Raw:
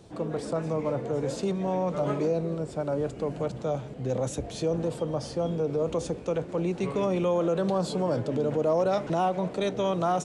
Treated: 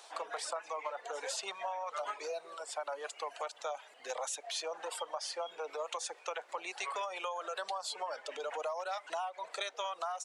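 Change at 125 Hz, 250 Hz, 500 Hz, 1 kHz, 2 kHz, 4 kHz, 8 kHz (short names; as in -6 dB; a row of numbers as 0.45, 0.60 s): under -40 dB, -33.0 dB, -14.0 dB, -5.5 dB, +0.5 dB, +1.0 dB, +1.5 dB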